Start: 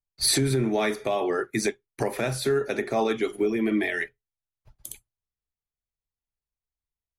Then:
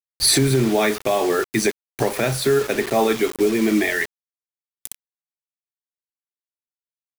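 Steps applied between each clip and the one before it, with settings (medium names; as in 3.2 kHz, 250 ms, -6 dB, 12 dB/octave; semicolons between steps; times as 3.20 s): word length cut 6-bit, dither none; trim +6 dB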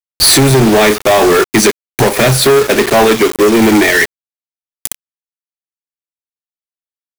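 transient shaper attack +2 dB, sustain -8 dB; waveshaping leveller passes 5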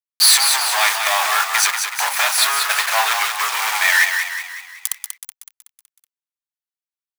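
steep high-pass 830 Hz 36 dB/octave; on a send: frequency-shifting echo 187 ms, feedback 50%, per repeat +32 Hz, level -6 dB; on the sum: trim -3.5 dB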